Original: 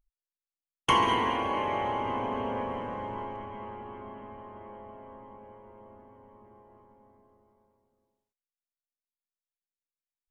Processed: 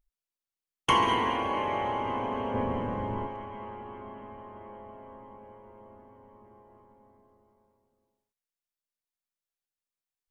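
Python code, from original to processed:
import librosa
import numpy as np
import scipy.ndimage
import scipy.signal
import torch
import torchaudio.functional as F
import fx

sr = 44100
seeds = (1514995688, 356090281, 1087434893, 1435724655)

y = fx.low_shelf(x, sr, hz=310.0, db=10.5, at=(2.54, 3.27))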